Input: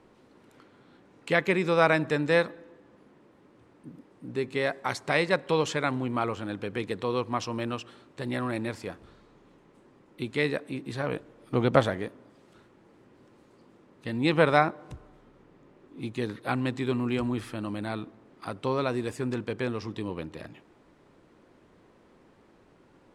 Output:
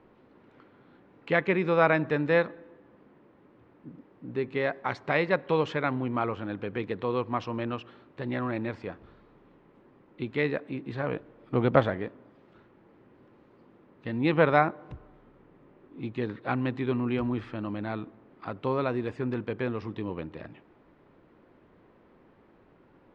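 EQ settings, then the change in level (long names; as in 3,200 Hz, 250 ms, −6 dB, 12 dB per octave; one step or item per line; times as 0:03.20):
low-pass filter 2,900 Hz 12 dB per octave
high-frequency loss of the air 52 metres
0.0 dB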